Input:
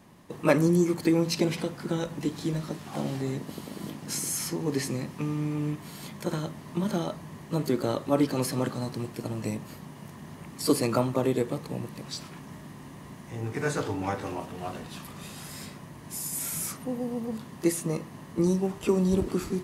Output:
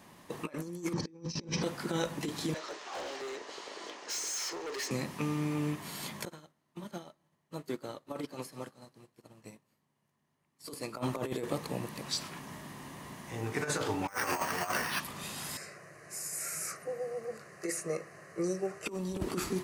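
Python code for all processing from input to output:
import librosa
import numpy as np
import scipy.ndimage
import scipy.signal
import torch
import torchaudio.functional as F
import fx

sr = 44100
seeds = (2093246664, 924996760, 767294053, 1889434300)

y = fx.chain(x, sr, fx.lowpass_res(hz=5700.0, q=10.0),
    fx.tilt_eq(slope=-3.5),
    fx.notch_comb(f0_hz=700.0), at=(0.93, 1.63))
y = fx.chain(y, sr, fx.cheby1_bandpass(low_hz=400.0, high_hz=6500.0, order=3),
    fx.clip_hard(threshold_db=-36.5), at=(2.54, 4.91))
y = fx.chain(y, sr, fx.echo_heads(ms=62, heads='first and third', feedback_pct=63, wet_db=-20.0),
    fx.upward_expand(threshold_db=-40.0, expansion=2.5), at=(6.25, 10.97))
y = fx.chain(y, sr, fx.peak_eq(hz=1700.0, db=15.0, octaves=1.9),
    fx.resample_bad(factor=6, down='filtered', up='hold'), at=(14.08, 15.0))
y = fx.chain(y, sr, fx.bandpass_edges(low_hz=160.0, high_hz=7200.0),
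    fx.fixed_phaser(hz=920.0, stages=6), at=(15.57, 18.86))
y = fx.low_shelf(y, sr, hz=390.0, db=-9.0)
y = fx.over_compress(y, sr, threshold_db=-33.0, ratio=-0.5)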